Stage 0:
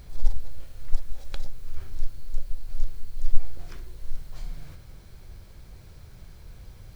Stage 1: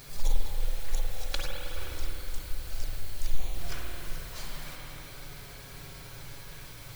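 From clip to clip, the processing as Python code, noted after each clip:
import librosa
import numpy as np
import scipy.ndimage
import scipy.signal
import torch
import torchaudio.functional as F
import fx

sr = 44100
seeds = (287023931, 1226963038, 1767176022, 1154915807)

y = fx.env_flanger(x, sr, rest_ms=8.0, full_db=-10.0)
y = fx.tilt_eq(y, sr, slope=2.5)
y = fx.rev_spring(y, sr, rt60_s=3.2, pass_ms=(46, 52), chirp_ms=60, drr_db=-3.0)
y = F.gain(torch.from_numpy(y), 7.5).numpy()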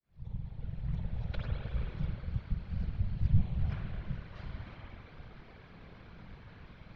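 y = fx.fade_in_head(x, sr, length_s=1.62)
y = fx.whisperise(y, sr, seeds[0])
y = scipy.ndimage.gaussian_filter1d(y, 2.8, mode='constant')
y = F.gain(torch.from_numpy(y), -5.5).numpy()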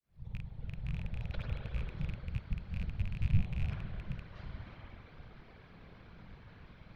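y = fx.rattle_buzz(x, sr, strikes_db=-32.0, level_db=-34.0)
y = F.gain(torch.from_numpy(y), -2.5).numpy()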